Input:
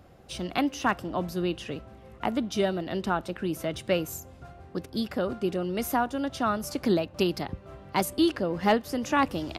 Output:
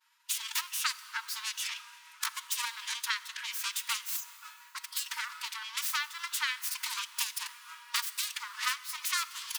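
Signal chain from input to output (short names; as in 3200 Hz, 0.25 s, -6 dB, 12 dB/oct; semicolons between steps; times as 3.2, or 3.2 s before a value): self-modulated delay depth 0.62 ms; tilt shelf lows -7.5 dB, about 1500 Hz; compressor 10:1, threshold -35 dBFS, peak gain reduction 20 dB; formant-preserving pitch shift +3.5 st; expander -50 dBFS; brick-wall FIR high-pass 890 Hz; plate-style reverb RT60 3.6 s, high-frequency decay 0.7×, DRR 14.5 dB; gain +7.5 dB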